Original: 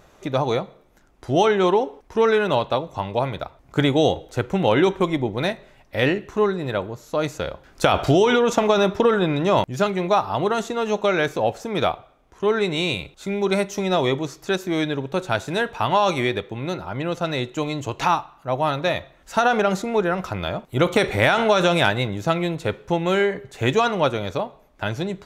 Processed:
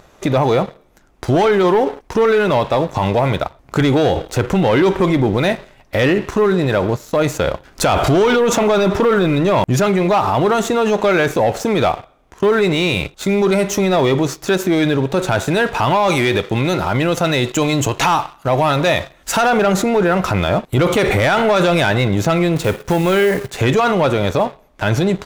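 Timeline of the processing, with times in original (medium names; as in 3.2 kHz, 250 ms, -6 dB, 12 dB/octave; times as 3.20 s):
16.10–19.50 s: treble shelf 3.1 kHz +7.5 dB
22.56–23.50 s: short-mantissa float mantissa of 2-bit
whole clip: dynamic bell 4.7 kHz, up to -5 dB, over -41 dBFS, Q 1.3; waveshaping leveller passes 2; peak limiter -16 dBFS; trim +8 dB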